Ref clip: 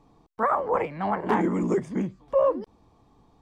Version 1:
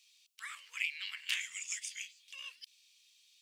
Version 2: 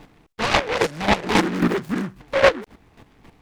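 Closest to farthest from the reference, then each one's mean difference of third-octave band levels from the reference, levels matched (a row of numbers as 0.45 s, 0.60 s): 2, 1; 9.0 dB, 23.5 dB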